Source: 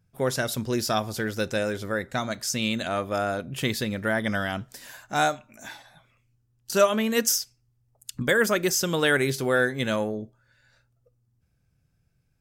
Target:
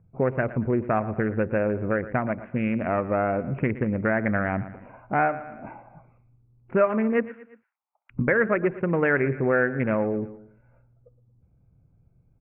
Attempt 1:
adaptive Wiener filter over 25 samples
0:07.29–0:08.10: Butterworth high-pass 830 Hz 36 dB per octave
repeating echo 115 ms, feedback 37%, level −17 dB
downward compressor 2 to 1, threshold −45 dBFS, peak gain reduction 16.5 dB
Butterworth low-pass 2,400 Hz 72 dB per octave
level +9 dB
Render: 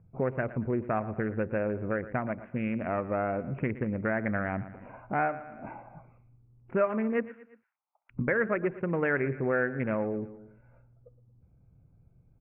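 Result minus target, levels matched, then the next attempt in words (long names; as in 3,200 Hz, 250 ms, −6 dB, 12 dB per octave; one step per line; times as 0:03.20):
downward compressor: peak gain reduction +6 dB
adaptive Wiener filter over 25 samples
0:07.29–0:08.10: Butterworth high-pass 830 Hz 36 dB per octave
repeating echo 115 ms, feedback 37%, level −17 dB
downward compressor 2 to 1, threshold −33.5 dBFS, peak gain reduction 11 dB
Butterworth low-pass 2,400 Hz 72 dB per octave
level +9 dB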